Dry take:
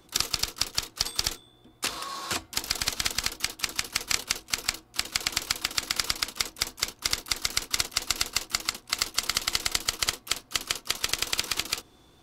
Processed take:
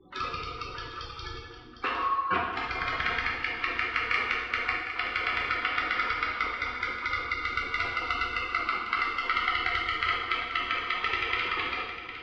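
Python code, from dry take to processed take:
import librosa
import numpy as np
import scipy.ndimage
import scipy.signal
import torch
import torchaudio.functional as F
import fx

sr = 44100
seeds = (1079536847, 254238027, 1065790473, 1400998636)

y = fx.spec_gate(x, sr, threshold_db=-10, keep='strong')
y = scipy.signal.sosfilt(scipy.signal.butter(4, 2300.0, 'lowpass', fs=sr, output='sos'), y)
y = fx.low_shelf(y, sr, hz=180.0, db=-12.0)
y = y + 10.0 ** (-11.5 / 20.0) * np.pad(y, (int(757 * sr / 1000.0), 0))[:len(y)]
y = fx.rev_plate(y, sr, seeds[0], rt60_s=1.1, hf_ratio=0.85, predelay_ms=0, drr_db=-3.5)
y = F.gain(torch.from_numpy(y), 4.5).numpy()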